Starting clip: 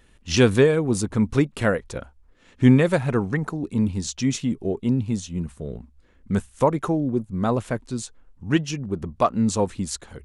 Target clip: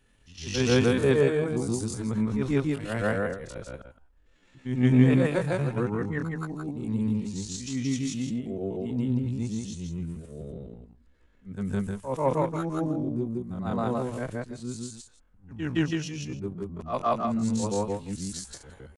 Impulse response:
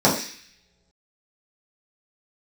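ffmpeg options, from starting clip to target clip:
-af "afftfilt=real='re':imag='-im':win_size=8192:overlap=0.75,aeval=exprs='0.473*(cos(1*acos(clip(val(0)/0.473,-1,1)))-cos(1*PI/2))+0.0106*(cos(7*acos(clip(val(0)/0.473,-1,1)))-cos(7*PI/2))':channel_layout=same,atempo=0.54"

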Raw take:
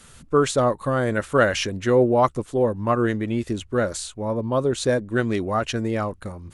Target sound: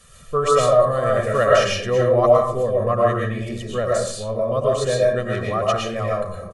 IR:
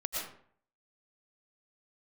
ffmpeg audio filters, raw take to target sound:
-filter_complex "[0:a]aecho=1:1:1.7:0.79[link_01];[1:a]atrim=start_sample=2205[link_02];[link_01][link_02]afir=irnorm=-1:irlink=0,volume=-3.5dB"

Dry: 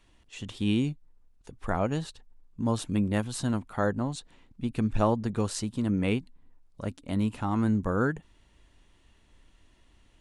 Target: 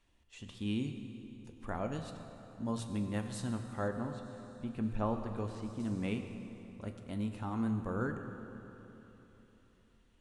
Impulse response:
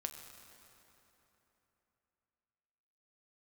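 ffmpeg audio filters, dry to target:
-filter_complex "[1:a]atrim=start_sample=2205[link_01];[0:a][link_01]afir=irnorm=-1:irlink=0,asettb=1/sr,asplit=3[link_02][link_03][link_04];[link_02]atrim=end=3.884[link_05];[link_03]atrim=start=3.88:end=5.8,asetpts=PTS-STARTPTS,afade=type=in:duration=0.004:curve=qsin,afade=type=out:start_time=1.916:duration=0.004:curve=qsin,acrossover=split=3000[link_06][link_07];[link_07]acompressor=threshold=-57dB:ratio=4:attack=1:release=60[link_08];[link_06][link_08]amix=inputs=2:normalize=0[link_09];[link_04]atrim=start=5.796[link_10];[link_05][link_09]acrossfade=duration=0.004:curve1=hsin:curve2=qsin[link_11];[link_11][link_10]acrossfade=duration=0.004:curve1=qsin:curve2=hsin,volume=-7.5dB"

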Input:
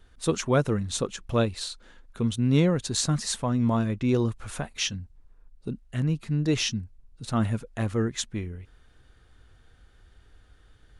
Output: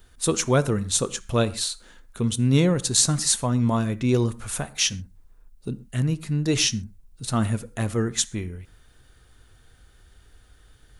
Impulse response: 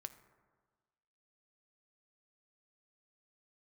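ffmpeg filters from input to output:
-filter_complex "[0:a]highshelf=frequency=5600:gain=9,asplit=2[link_01][link_02];[1:a]atrim=start_sample=2205,atrim=end_sample=6174,highshelf=frequency=10000:gain=11.5[link_03];[link_02][link_03]afir=irnorm=-1:irlink=0,volume=10dB[link_04];[link_01][link_04]amix=inputs=2:normalize=0,volume=-7dB"

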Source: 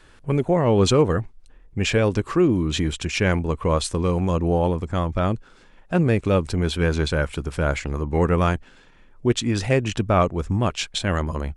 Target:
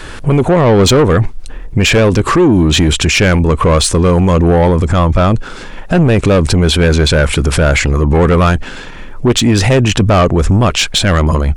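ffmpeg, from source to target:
ffmpeg -i in.wav -af "asoftclip=type=tanh:threshold=-18dB,alimiter=level_in=27.5dB:limit=-1dB:release=50:level=0:latency=1,volume=-3.5dB" out.wav

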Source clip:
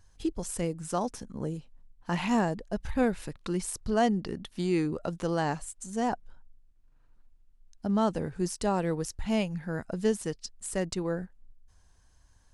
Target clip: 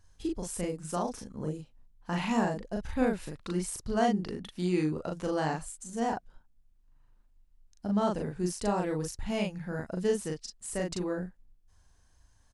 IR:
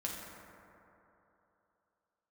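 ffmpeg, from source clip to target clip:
-filter_complex "[0:a]asplit=2[link_01][link_02];[link_02]adelay=39,volume=-2dB[link_03];[link_01][link_03]amix=inputs=2:normalize=0,volume=-3.5dB"

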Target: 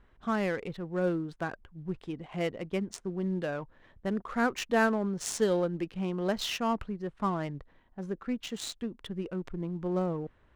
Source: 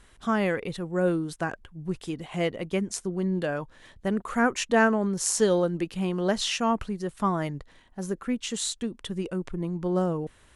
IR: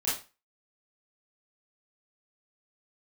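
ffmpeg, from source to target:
-af "acrusher=bits=8:mode=log:mix=0:aa=0.000001,adynamicsmooth=sensitivity=6:basefreq=1900,volume=-4.5dB"

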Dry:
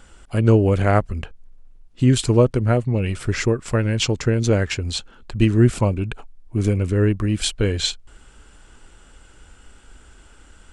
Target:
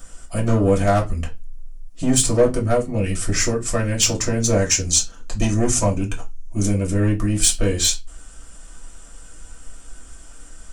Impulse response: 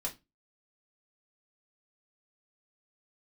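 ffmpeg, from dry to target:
-filter_complex "[0:a]asoftclip=type=tanh:threshold=-11.5dB,asettb=1/sr,asplit=3[link_01][link_02][link_03];[link_01]atrim=end=4.574[link_04];[link_02]atrim=start=4.57:end=6.62,asetpts=PTS-STARTPTS,afade=type=in:duration=0.004:curve=qsin,afade=type=out:start_time=2.046:duration=0.004:curve=qsin,equalizer=frequency=6300:width=4.1:gain=11[link_05];[link_03]atrim=start=6.616[link_06];[link_04][link_05]acrossfade=duration=0.004:curve1=hsin:curve2=qsin[link_07];[link_07][link_06]acrossfade=duration=0.004:curve1=qsin:curve2=hsin,aexciter=amount=3.9:drive=5.7:freq=5200[link_08];[1:a]atrim=start_sample=2205[link_09];[link_08][link_09]afir=irnorm=-1:irlink=0"

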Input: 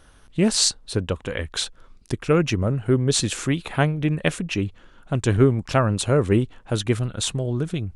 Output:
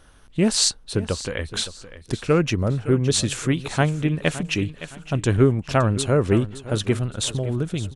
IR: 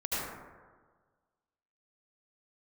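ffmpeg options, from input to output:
-filter_complex "[0:a]aecho=1:1:565|1130|1695:0.178|0.0551|0.0171,asettb=1/sr,asplit=3[link_01][link_02][link_03];[link_01]atrim=end=4.434[link_04];[link_02]atrim=start=4.43:end=5.13,asetpts=PTS-STARTPTS,afade=type=in:duration=0.004:curve=qsin,afade=type=out:start_time=0.696:duration=0.004:curve=qsin,adynamicequalizer=threshold=0.00708:dfrequency=1600:dqfactor=0.7:tfrequency=1600:tqfactor=0.7:attack=5:release=100:ratio=0.375:range=2.5:mode=boostabove:tftype=highshelf[link_05];[link_03]atrim=start=5.126[link_06];[link_04][link_05]acrossfade=duration=0.004:curve1=hsin:curve2=qsin[link_07];[link_07][link_06]acrossfade=duration=0.004:curve1=qsin:curve2=hsin"

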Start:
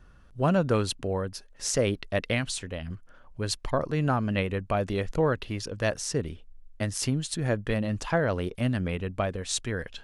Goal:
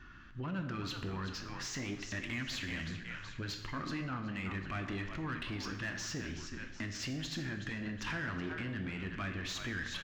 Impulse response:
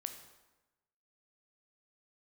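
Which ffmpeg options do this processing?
-filter_complex "[0:a]firequalizer=gain_entry='entry(330,0);entry(490,-21);entry(1000,-8);entry(1700,0);entry(6000,-5)':delay=0.05:min_phase=1,asplit=5[link_01][link_02][link_03][link_04][link_05];[link_02]adelay=373,afreqshift=-60,volume=-15dB[link_06];[link_03]adelay=746,afreqshift=-120,volume=-23.2dB[link_07];[link_04]adelay=1119,afreqshift=-180,volume=-31.4dB[link_08];[link_05]adelay=1492,afreqshift=-240,volume=-39.5dB[link_09];[link_01][link_06][link_07][link_08][link_09]amix=inputs=5:normalize=0,alimiter=limit=-24dB:level=0:latency=1:release=117,flanger=delay=2.7:depth=9.5:regen=-70:speed=0.42:shape=sinusoidal,aresample=16000,asoftclip=type=tanh:threshold=-32.5dB,aresample=44100,acompressor=threshold=-43dB:ratio=6,asplit=2[link_10][link_11];[link_11]highpass=frequency=720:poles=1,volume=17dB,asoftclip=type=tanh:threshold=-33.5dB[link_12];[link_10][link_12]amix=inputs=2:normalize=0,lowpass=frequency=2400:poles=1,volume=-6dB[link_13];[1:a]atrim=start_sample=2205[link_14];[link_13][link_14]afir=irnorm=-1:irlink=0,volume=8.5dB"

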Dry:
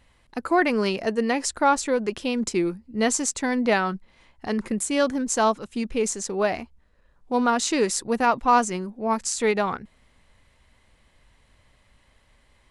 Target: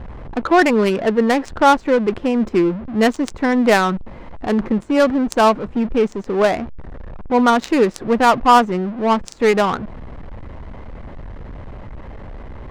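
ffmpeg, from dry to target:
ffmpeg -i in.wav -af "aeval=exprs='val(0)+0.5*0.0266*sgn(val(0))':channel_layout=same,adynamicsmooth=sensitivity=1.5:basefreq=620,volume=7dB" out.wav

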